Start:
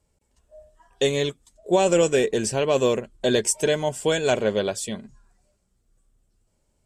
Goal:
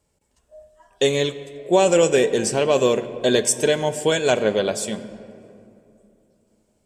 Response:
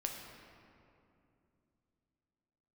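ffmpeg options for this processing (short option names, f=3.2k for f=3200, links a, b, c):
-filter_complex "[0:a]lowshelf=f=84:g=-9.5,asplit=2[a][b];[1:a]atrim=start_sample=2205[c];[b][c]afir=irnorm=-1:irlink=0,volume=-6dB[d];[a][d]amix=inputs=2:normalize=0"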